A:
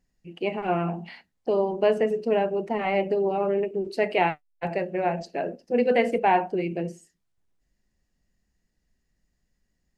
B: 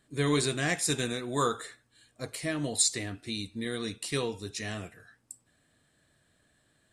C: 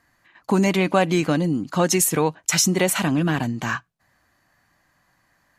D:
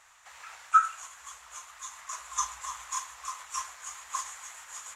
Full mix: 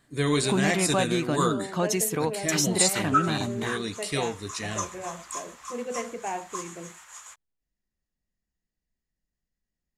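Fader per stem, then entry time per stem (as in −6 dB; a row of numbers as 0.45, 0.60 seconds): −12.0, +2.5, −7.0, −2.0 decibels; 0.00, 0.00, 0.00, 2.40 seconds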